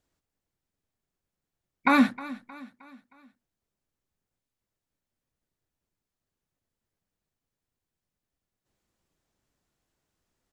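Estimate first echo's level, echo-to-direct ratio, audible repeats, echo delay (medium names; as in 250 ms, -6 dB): -18.0 dB, -17.0 dB, 3, 312 ms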